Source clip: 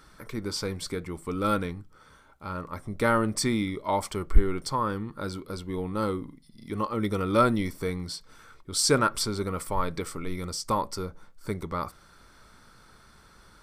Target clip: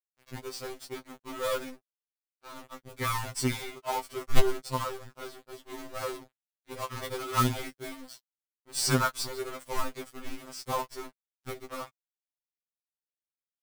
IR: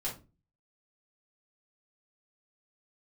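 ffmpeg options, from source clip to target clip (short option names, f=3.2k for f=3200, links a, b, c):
-af "aeval=exprs='sgn(val(0))*max(abs(val(0))-0.0188,0)':c=same,acrusher=bits=2:mode=log:mix=0:aa=0.000001,afftfilt=real='re*2.45*eq(mod(b,6),0)':imag='im*2.45*eq(mod(b,6),0)':win_size=2048:overlap=0.75"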